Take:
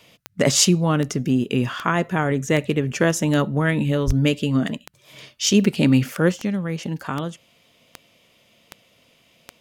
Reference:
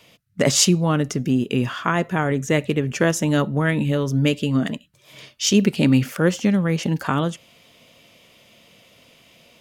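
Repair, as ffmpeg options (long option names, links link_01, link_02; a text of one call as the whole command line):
ffmpeg -i in.wav -filter_complex "[0:a]adeclick=threshold=4,asplit=3[link_01][link_02][link_03];[link_01]afade=type=out:start_time=4.06:duration=0.02[link_04];[link_02]highpass=frequency=140:width=0.5412,highpass=frequency=140:width=1.3066,afade=type=in:start_time=4.06:duration=0.02,afade=type=out:start_time=4.18:duration=0.02[link_05];[link_03]afade=type=in:start_time=4.18:duration=0.02[link_06];[link_04][link_05][link_06]amix=inputs=3:normalize=0,asetnsamples=nb_out_samples=441:pad=0,asendcmd='6.32 volume volume 5.5dB',volume=0dB" out.wav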